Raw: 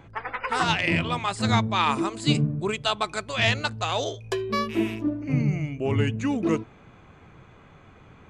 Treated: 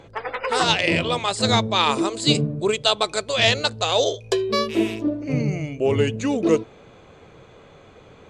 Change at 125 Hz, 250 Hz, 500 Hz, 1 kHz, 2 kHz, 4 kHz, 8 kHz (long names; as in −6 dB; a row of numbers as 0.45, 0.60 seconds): −0.5, +2.5, +8.0, +2.5, +2.5, +8.0, +8.0 decibels